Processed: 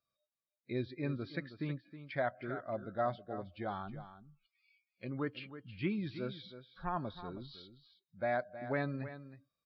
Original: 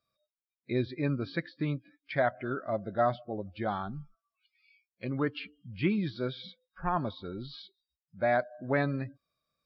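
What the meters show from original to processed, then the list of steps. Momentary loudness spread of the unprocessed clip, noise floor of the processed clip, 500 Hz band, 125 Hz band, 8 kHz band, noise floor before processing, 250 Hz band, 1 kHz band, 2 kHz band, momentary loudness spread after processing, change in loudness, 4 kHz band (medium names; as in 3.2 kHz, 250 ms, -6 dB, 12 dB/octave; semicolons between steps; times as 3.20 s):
13 LU, under -85 dBFS, -7.0 dB, -6.5 dB, no reading, under -85 dBFS, -7.0 dB, -7.0 dB, -7.0 dB, 13 LU, -7.0 dB, -7.0 dB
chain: delay 318 ms -12.5 dB; trim -7 dB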